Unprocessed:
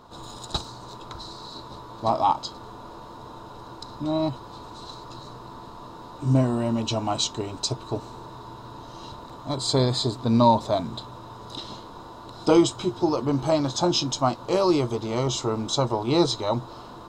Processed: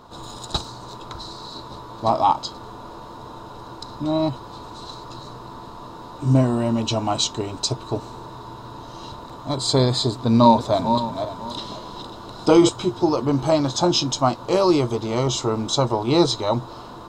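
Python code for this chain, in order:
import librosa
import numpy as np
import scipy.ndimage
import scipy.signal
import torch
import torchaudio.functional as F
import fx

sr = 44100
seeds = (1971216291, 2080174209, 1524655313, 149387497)

y = fx.reverse_delay_fb(x, sr, ms=273, feedback_pct=44, wet_db=-7.0, at=(10.16, 12.69))
y = F.gain(torch.from_numpy(y), 3.5).numpy()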